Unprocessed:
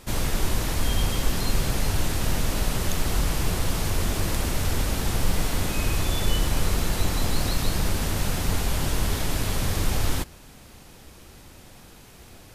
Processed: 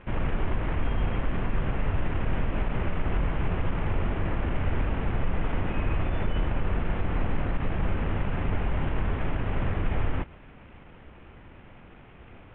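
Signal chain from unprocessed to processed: CVSD coder 16 kbps; peak limiter -16.5 dBFS, peak gain reduction 5.5 dB; distance through air 240 m

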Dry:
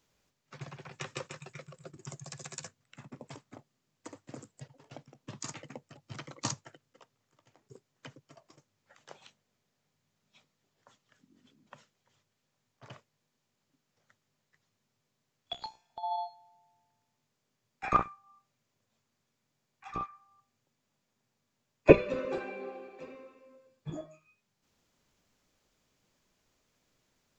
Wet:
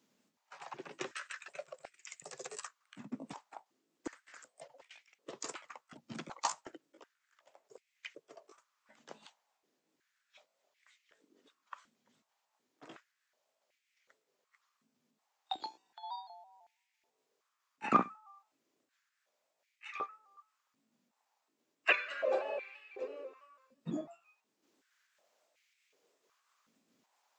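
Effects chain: pitch shift switched off and on +1.5 st, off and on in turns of 166 ms; step-sequenced high-pass 2.7 Hz 230–2200 Hz; trim -2 dB

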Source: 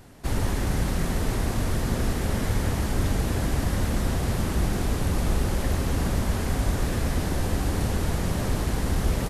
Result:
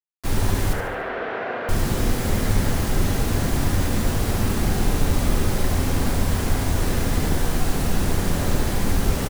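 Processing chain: 7.39–8.01 s: frequency shift -34 Hz; word length cut 6-bit, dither none; 0.73–1.69 s: cabinet simulation 480–2700 Hz, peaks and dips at 480 Hz +8 dB, 680 Hz +6 dB, 1.5 kHz +7 dB; feedback delay 72 ms, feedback 48%, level -8 dB; reverberation RT60 0.50 s, pre-delay 3 ms, DRR 7.5 dB; trim +2 dB

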